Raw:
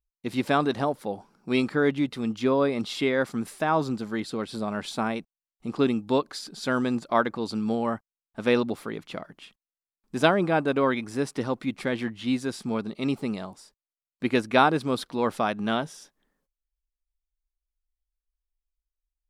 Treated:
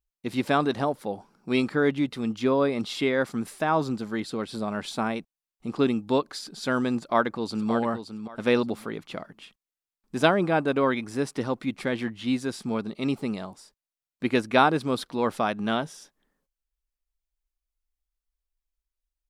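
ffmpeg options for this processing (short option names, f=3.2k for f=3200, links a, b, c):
-filter_complex "[0:a]asplit=2[a][b];[b]afade=t=in:st=6.97:d=0.01,afade=t=out:st=7.7:d=0.01,aecho=0:1:570|1140|1710:0.375837|0.0751675|0.0150335[c];[a][c]amix=inputs=2:normalize=0"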